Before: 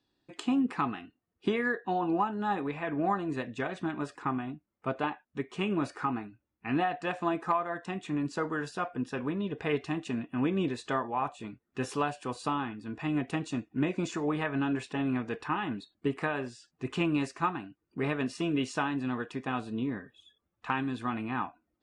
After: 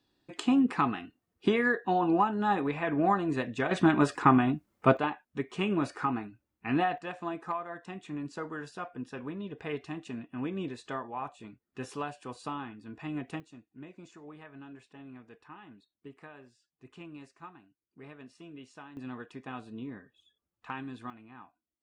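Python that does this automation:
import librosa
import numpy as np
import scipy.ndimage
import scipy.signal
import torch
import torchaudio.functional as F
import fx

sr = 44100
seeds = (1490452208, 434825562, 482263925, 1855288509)

y = fx.gain(x, sr, db=fx.steps((0.0, 3.0), (3.71, 10.5), (4.97, 1.0), (6.98, -6.0), (13.4, -18.0), (18.97, -8.0), (21.1, -18.0)))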